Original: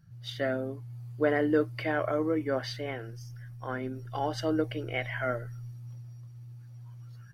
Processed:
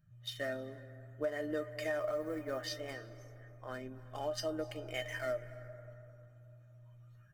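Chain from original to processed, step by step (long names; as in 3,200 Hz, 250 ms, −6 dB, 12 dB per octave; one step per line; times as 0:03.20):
adaptive Wiener filter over 9 samples
0:01.98–0:02.66: floating-point word with a short mantissa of 6 bits
high-shelf EQ 6,600 Hz +6.5 dB
tuned comb filter 610 Hz, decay 0.15 s, harmonics all, mix 90%
convolution reverb RT60 3.0 s, pre-delay 221 ms, DRR 15.5 dB
downward compressor 6 to 1, threshold −39 dBFS, peak gain reduction 10 dB
high-shelf EQ 3,100 Hz +7 dB
level +6.5 dB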